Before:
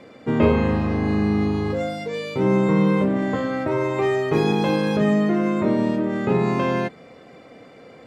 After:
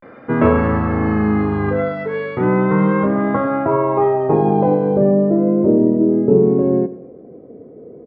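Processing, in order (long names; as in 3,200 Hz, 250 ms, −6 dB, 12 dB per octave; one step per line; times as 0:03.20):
pitch vibrato 0.35 Hz 84 cents
in parallel at −3 dB: speech leveller within 4 dB 0.5 s
on the sum: low-pass filter sweep 1,500 Hz → 400 Hz, 0:02.92–0:05.93
on a send: repeating echo 99 ms, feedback 44%, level −17 dB
on the sum: level −1.5 dB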